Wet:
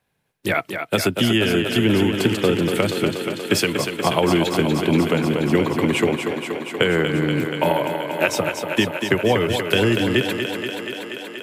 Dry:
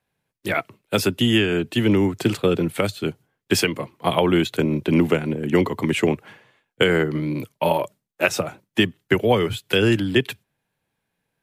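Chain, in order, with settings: compression 2:1, threshold -23 dBFS, peak gain reduction 6.5 dB; on a send: thinning echo 239 ms, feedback 81%, high-pass 150 Hz, level -6.5 dB; on the sum: trim +4.5 dB

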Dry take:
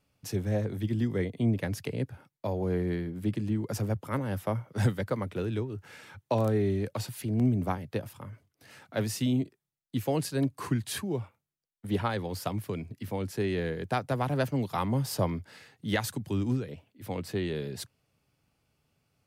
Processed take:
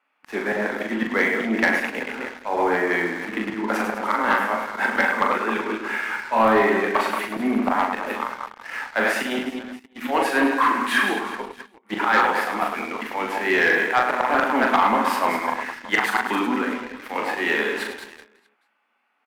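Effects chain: chunks repeated in reverse 141 ms, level -7.5 dB; elliptic high-pass 220 Hz, stop band 40 dB; resonant high shelf 2.6 kHz -8 dB, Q 1.5; hum notches 50/100/150/200/250/300/350/400/450 Hz; slow attack 117 ms; high-order bell 1.7 kHz +13.5 dB 2.6 oct; doubling 24 ms -11.5 dB; reverse bouncing-ball echo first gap 40 ms, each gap 1.6×, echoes 5; waveshaping leveller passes 2

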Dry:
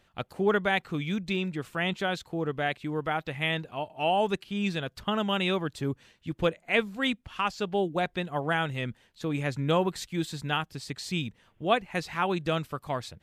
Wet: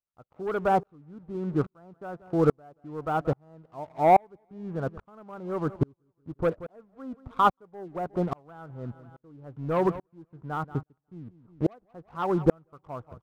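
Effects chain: steep low-pass 1.4 kHz 72 dB/octave; peaking EQ 200 Hz -5.5 dB 0.26 oct; waveshaping leveller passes 2; feedback delay 181 ms, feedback 47%, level -23 dB; sawtooth tremolo in dB swelling 1.2 Hz, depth 40 dB; trim +5.5 dB

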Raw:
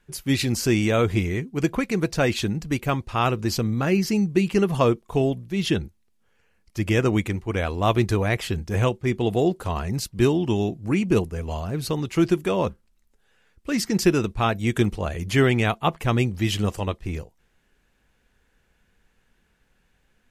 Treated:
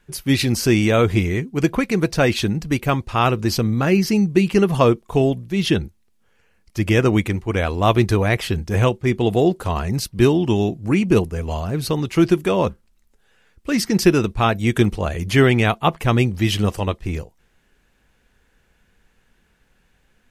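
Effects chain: dynamic bell 7.2 kHz, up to -6 dB, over -55 dBFS, Q 6.5; trim +4.5 dB

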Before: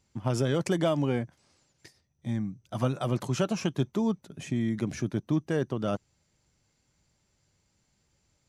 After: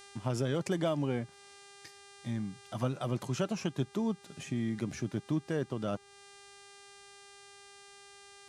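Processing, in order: mains buzz 400 Hz, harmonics 25, -55 dBFS -4 dB/octave; tape noise reduction on one side only encoder only; trim -5 dB

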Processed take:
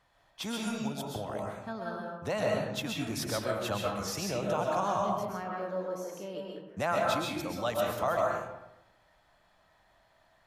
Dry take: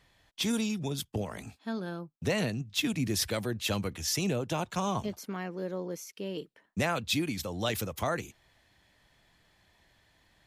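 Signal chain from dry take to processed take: high-order bell 920 Hz +9 dB; algorithmic reverb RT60 0.97 s, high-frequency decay 0.5×, pre-delay 90 ms, DRR -1.5 dB; trim -7.5 dB

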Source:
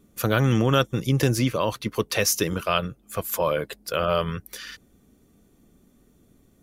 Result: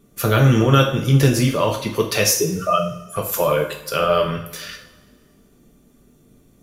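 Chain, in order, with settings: 2.33–3.16 s: spectral contrast enhancement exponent 2.7; two-slope reverb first 0.48 s, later 1.8 s, from -18 dB, DRR 0.5 dB; trim +2.5 dB

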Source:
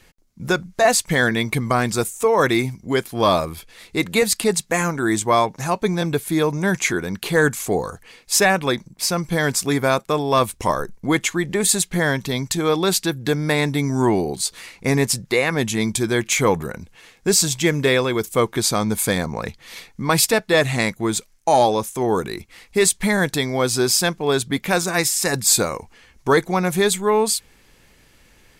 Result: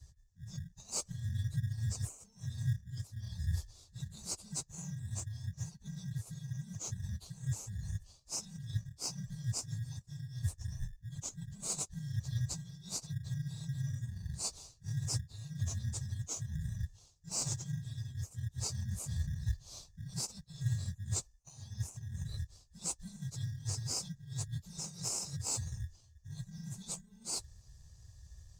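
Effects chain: phase randomisation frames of 50 ms; treble shelf 6.6 kHz -5 dB; reverse; compression 6:1, threshold -29 dBFS, peak gain reduction 17.5 dB; reverse; inverse Chebyshev band-stop 300–2300 Hz, stop band 60 dB; distance through air 170 m; in parallel at -10.5 dB: sample-and-hold 25×; on the sum: high-pass 200 Hz 6 dB/octave; trim +13.5 dB

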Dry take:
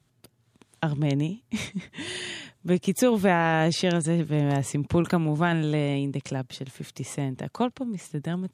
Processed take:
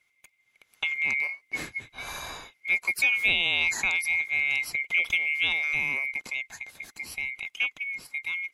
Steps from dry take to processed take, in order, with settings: split-band scrambler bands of 2 kHz; 6.50–7.33 s: dynamic bell 1.3 kHz, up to -6 dB, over -45 dBFS, Q 1.7; trim -3 dB

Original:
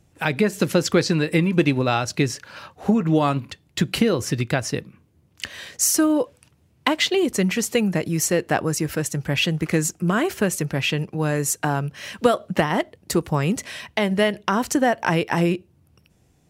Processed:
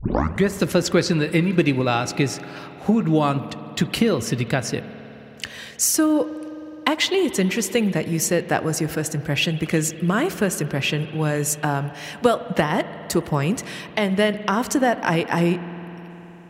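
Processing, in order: tape start-up on the opening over 0.47 s; spring tank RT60 4 s, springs 52 ms, chirp 25 ms, DRR 12.5 dB

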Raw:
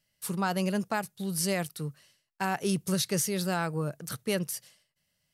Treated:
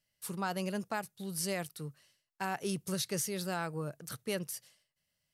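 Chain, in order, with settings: peaking EQ 180 Hz -2.5 dB 0.77 oct; trim -5.5 dB

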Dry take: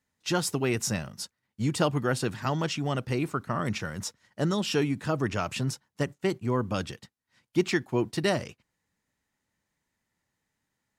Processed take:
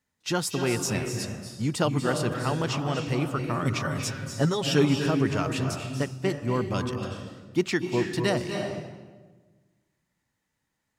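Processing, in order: 3.64–5.10 s: comb 7.4 ms, depth 91%; reverberation RT60 1.3 s, pre-delay 228 ms, DRR 4.5 dB

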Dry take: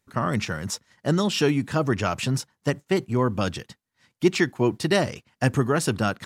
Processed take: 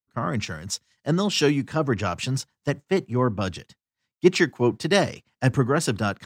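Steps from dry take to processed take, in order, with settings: peaking EQ 11 kHz -14.5 dB 0.23 oct; three bands expanded up and down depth 70%

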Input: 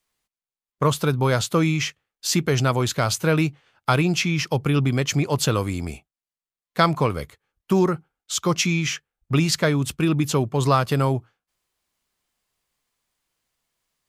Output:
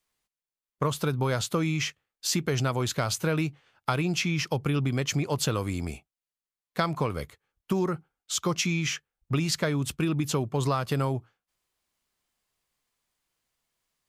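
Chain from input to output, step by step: compression 4:1, threshold -20 dBFS, peak gain reduction 7 dB; trim -3 dB

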